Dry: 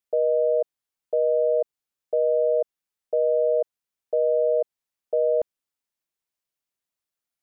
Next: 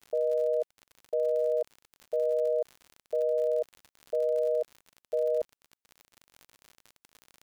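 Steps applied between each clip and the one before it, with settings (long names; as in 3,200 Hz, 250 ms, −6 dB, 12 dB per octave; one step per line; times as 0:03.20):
surface crackle 63 per second −31 dBFS
level −6 dB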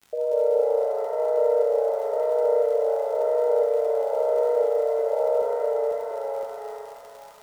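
delay with pitch and tempo change per echo 176 ms, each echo −1 semitone, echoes 2
reverb with rising layers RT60 3.2 s, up +7 semitones, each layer −8 dB, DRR −0.5 dB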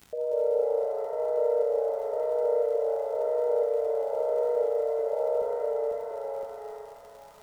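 low-shelf EQ 270 Hz +11.5 dB
upward compression, threshold −38 dBFS
level −7 dB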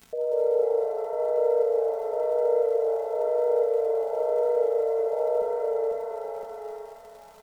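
comb filter 4.5 ms, depth 56%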